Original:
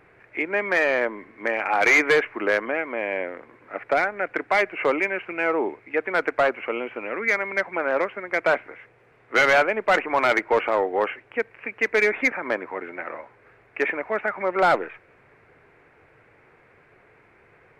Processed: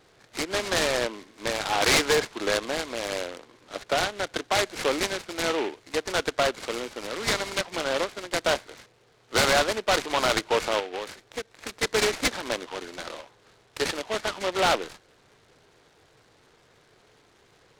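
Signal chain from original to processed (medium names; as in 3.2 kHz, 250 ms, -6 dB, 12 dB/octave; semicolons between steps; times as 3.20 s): 10.79–11.71 s: compression 10:1, threshold -26 dBFS, peak gain reduction 9.5 dB; delay time shaken by noise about 2 kHz, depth 0.1 ms; trim -3.5 dB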